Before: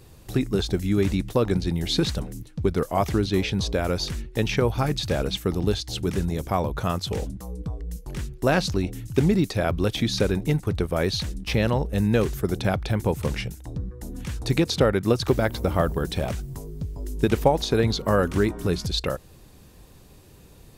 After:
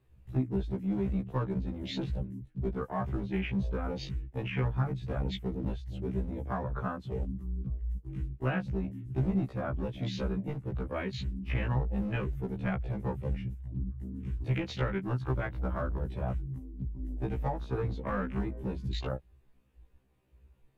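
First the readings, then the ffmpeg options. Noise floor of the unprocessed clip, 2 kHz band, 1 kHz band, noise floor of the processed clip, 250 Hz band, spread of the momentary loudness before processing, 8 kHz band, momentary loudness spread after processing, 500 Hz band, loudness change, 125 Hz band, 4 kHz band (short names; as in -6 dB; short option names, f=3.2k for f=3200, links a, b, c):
-49 dBFS, -10.0 dB, -10.0 dB, -63 dBFS, -9.0 dB, 12 LU, under -20 dB, 6 LU, -13.5 dB, -9.5 dB, -7.0 dB, -17.0 dB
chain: -filter_complex "[0:a]afwtdn=0.0316,highshelf=f=3.5k:t=q:w=1.5:g=-9.5,acrossover=split=190|950[a][b][c];[b]acompressor=threshold=-32dB:ratio=4[d];[c]acompressor=threshold=-32dB:ratio=4[e];[a][d][e]amix=inputs=3:normalize=0,acrossover=split=690|1300[f][g][h];[f]asoftclip=type=hard:threshold=-21dB[i];[i][g][h]amix=inputs=3:normalize=0,afftfilt=real='re*1.73*eq(mod(b,3),0)':imag='im*1.73*eq(mod(b,3),0)':win_size=2048:overlap=0.75,volume=-2dB"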